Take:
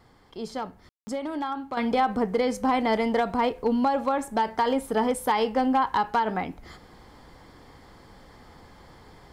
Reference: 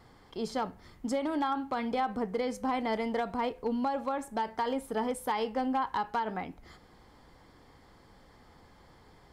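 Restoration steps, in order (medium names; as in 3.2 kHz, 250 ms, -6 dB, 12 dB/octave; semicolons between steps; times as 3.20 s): room tone fill 0.89–1.07 s; trim 0 dB, from 1.77 s -7.5 dB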